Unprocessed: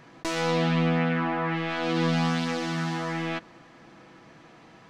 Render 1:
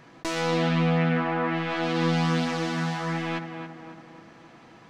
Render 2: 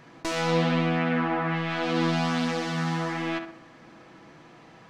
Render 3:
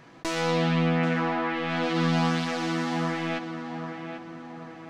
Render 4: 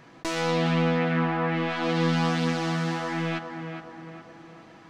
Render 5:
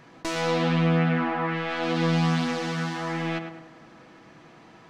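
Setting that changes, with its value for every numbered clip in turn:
tape echo, time: 276, 66, 787, 413, 106 ms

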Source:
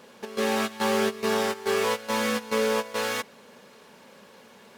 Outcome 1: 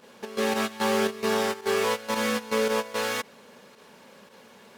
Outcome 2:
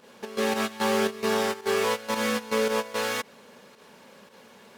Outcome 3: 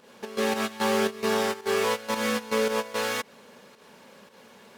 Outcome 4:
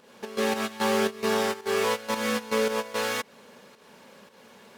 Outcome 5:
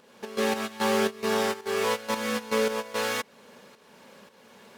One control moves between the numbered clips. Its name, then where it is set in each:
pump, release: 62, 98, 154, 230, 439 ms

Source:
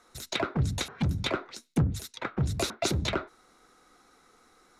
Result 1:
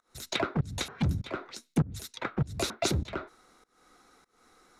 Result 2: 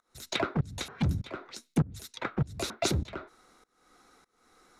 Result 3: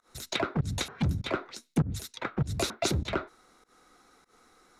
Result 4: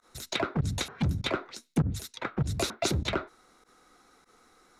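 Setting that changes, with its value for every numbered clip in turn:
pump, release: 310, 458, 135, 66 ms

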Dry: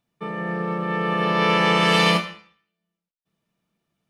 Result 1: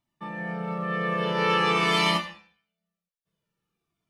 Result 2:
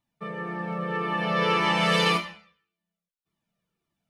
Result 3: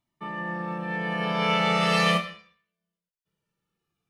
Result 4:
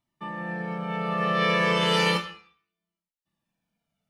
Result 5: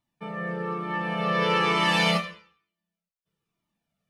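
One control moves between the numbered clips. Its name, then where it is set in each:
cascading flanger, rate: 0.48, 1.8, 0.2, 0.33, 1.1 Hz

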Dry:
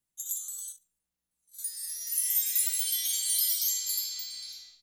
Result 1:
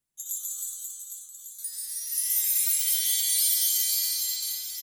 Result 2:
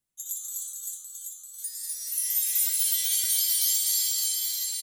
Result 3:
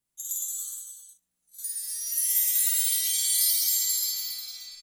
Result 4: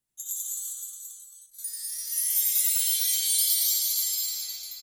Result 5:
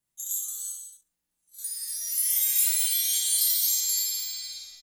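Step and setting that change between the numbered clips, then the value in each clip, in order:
reverse bouncing-ball echo, first gap: 140, 250, 50, 90, 30 ms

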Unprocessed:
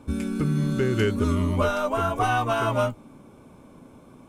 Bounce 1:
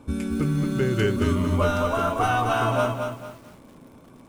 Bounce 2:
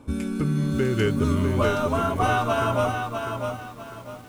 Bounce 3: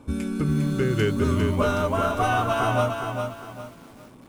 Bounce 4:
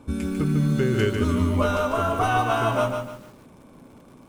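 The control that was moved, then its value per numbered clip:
lo-fi delay, time: 0.225, 0.65, 0.404, 0.148 s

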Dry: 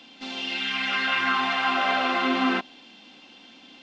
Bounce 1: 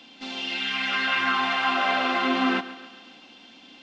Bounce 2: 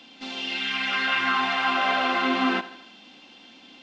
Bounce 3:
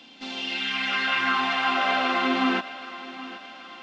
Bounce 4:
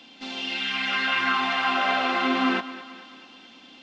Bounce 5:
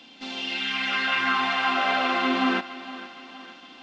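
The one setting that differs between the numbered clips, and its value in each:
thinning echo, time: 139, 79, 775, 218, 464 ms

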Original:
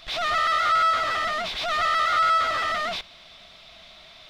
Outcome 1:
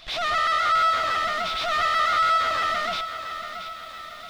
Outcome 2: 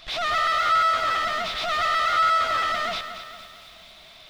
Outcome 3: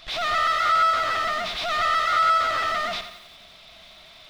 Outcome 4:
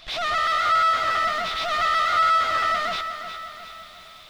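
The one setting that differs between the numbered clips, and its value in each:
lo-fi delay, time: 678, 228, 89, 359 ms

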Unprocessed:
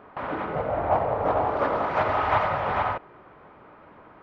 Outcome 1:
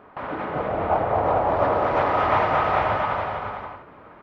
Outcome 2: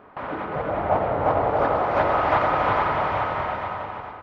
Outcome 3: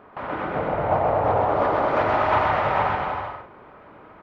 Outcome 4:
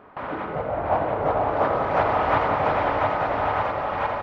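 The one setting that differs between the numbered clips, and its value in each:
bouncing-ball echo, first gap: 0.23, 0.35, 0.13, 0.69 s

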